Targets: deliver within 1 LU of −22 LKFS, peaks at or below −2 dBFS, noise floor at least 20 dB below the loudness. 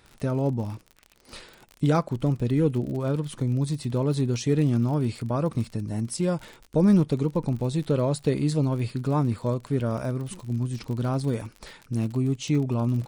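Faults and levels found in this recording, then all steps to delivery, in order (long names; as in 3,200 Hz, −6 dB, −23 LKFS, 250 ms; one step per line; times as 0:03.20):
crackle rate 51 per second; integrated loudness −26.0 LKFS; sample peak −10.0 dBFS; target loudness −22.0 LKFS
→ click removal
level +4 dB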